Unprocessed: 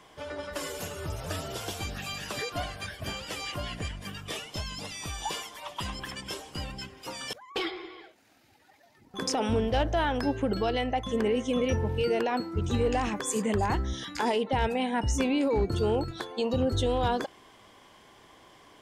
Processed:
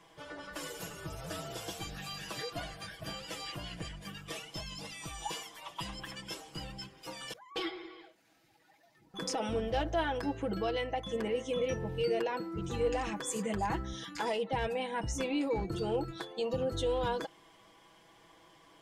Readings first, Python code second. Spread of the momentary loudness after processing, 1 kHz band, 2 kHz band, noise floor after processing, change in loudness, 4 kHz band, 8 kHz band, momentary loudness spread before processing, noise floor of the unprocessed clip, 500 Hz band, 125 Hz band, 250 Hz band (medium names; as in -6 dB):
11 LU, -6.0 dB, -5.5 dB, -64 dBFS, -6.0 dB, -5.0 dB, -5.5 dB, 11 LU, -58 dBFS, -4.5 dB, -8.5 dB, -7.5 dB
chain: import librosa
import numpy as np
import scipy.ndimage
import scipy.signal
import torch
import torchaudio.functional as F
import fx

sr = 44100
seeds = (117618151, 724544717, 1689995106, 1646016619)

y = x + 0.69 * np.pad(x, (int(6.1 * sr / 1000.0), 0))[:len(x)]
y = y * librosa.db_to_amplitude(-7.0)